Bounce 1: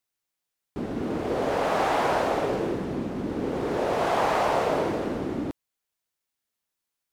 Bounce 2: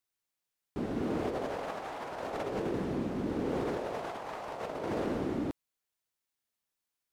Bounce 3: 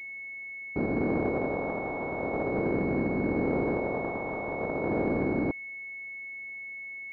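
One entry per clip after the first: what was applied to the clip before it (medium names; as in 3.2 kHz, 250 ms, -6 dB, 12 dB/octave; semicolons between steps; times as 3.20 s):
compressor with a negative ratio -28 dBFS, ratio -0.5; trim -6 dB
spectral levelling over time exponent 0.6; class-D stage that switches slowly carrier 2.2 kHz; trim +3 dB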